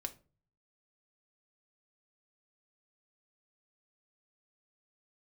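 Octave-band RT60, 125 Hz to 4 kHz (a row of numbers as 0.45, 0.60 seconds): 0.85, 0.50, 0.40, 0.30, 0.25, 0.25 seconds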